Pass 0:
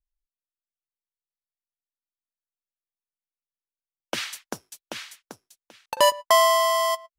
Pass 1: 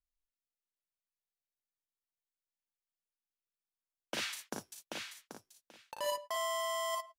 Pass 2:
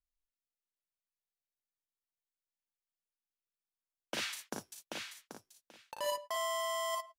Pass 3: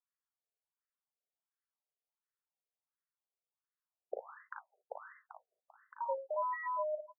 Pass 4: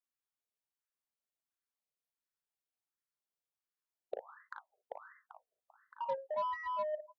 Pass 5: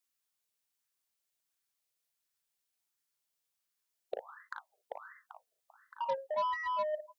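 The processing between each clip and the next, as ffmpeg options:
-af "areverse,acompressor=threshold=-25dB:ratio=10,areverse,aecho=1:1:37|56:0.596|0.596,volume=-8.5dB"
-af anull
-af "afreqshift=-47,afftfilt=real='re*between(b*sr/1024,520*pow(1500/520,0.5+0.5*sin(2*PI*1.4*pts/sr))/1.41,520*pow(1500/520,0.5+0.5*sin(2*PI*1.4*pts/sr))*1.41)':imag='im*between(b*sr/1024,520*pow(1500/520,0.5+0.5*sin(2*PI*1.4*pts/sr))/1.41,520*pow(1500/520,0.5+0.5*sin(2*PI*1.4*pts/sr))*1.41)':win_size=1024:overlap=0.75,volume=4dB"
-af "aeval=exprs='0.0596*(cos(1*acos(clip(val(0)/0.0596,-1,1)))-cos(1*PI/2))+0.00237*(cos(7*acos(clip(val(0)/0.0596,-1,1)))-cos(7*PI/2))':c=same"
-af "highshelf=f=2.1k:g=9,volume=1.5dB"

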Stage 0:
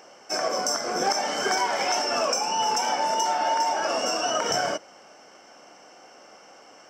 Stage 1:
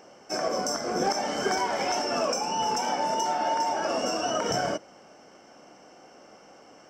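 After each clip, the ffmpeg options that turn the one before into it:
-af "lowshelf=f=410:g=12,volume=-5dB"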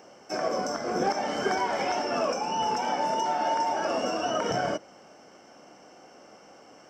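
-filter_complex "[0:a]highpass=43,acrossover=split=4400[a][b];[b]acompressor=threshold=-46dB:ratio=6[c];[a][c]amix=inputs=2:normalize=0"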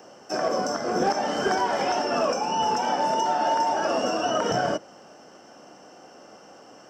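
-filter_complex "[0:a]highpass=63,bandreject=f=2.2k:w=8.2,acrossover=split=120|1200|1700[a][b][c][d];[b]volume=20.5dB,asoftclip=hard,volume=-20.5dB[e];[a][e][c][d]amix=inputs=4:normalize=0,volume=3.5dB"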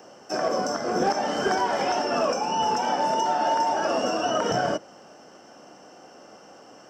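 -af anull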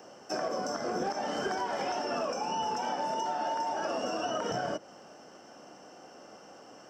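-af "acompressor=threshold=-27dB:ratio=4,volume=-3dB"

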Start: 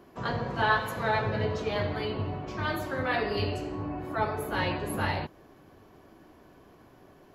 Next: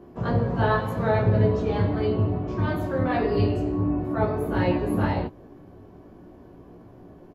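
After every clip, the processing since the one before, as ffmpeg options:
-filter_complex "[0:a]tiltshelf=f=890:g=8.5,asplit=2[a][b];[b]aecho=0:1:17|28:0.668|0.501[c];[a][c]amix=inputs=2:normalize=0"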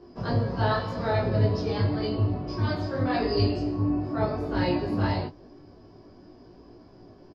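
-filter_complex "[0:a]flanger=delay=2.1:depth=9:regen=-50:speed=0.89:shape=triangular,lowpass=f=5k:t=q:w=13,asplit=2[a][b];[b]adelay=20,volume=-7dB[c];[a][c]amix=inputs=2:normalize=0"

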